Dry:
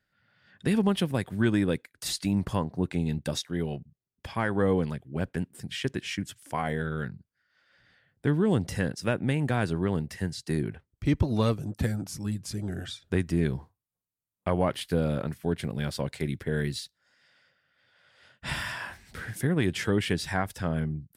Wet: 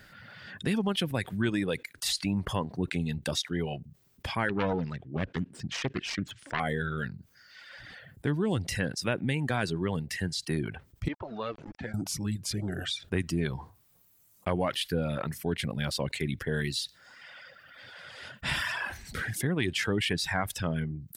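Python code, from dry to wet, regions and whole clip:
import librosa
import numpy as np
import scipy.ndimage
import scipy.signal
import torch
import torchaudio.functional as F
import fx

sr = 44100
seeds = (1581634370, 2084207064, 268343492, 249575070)

y = fx.chain(x, sr, fx.self_delay(depth_ms=0.52),
    fx.air_absorb(metres=140.0), at=(4.49, 6.6))
y = fx.chain(y, sr, fx.highpass(hz=1300.0, slope=6),
    fx.quant_dither(seeds[0], bits=8, dither='none'),
    fx.spacing_loss(db_at_10k=43), at=(11.08, 11.94))
y = fx.dereverb_blind(y, sr, rt60_s=1.1)
y = fx.dynamic_eq(y, sr, hz=2900.0, q=0.74, threshold_db=-49.0, ratio=4.0, max_db=5)
y = fx.env_flatten(y, sr, amount_pct=50)
y = F.gain(torch.from_numpy(y), -4.5).numpy()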